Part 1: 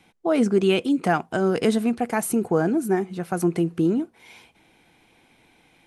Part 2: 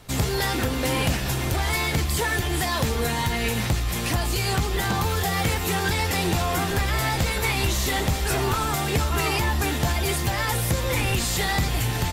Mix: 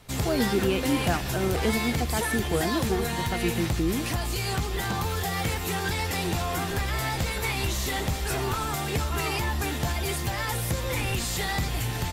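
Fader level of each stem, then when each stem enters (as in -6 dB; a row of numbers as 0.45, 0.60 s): -6.5, -4.5 dB; 0.00, 0.00 s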